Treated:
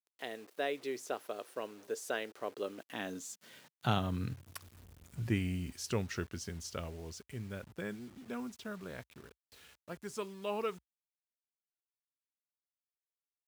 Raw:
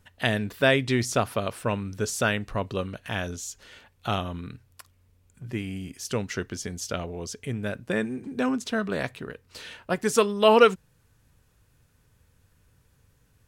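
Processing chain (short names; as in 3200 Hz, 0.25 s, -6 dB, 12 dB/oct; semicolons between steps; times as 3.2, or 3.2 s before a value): Doppler pass-by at 4.81, 18 m/s, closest 8.4 m; bit-crush 10-bit; high-pass sweep 390 Hz -> 60 Hz, 2.53–4.87; gain +1.5 dB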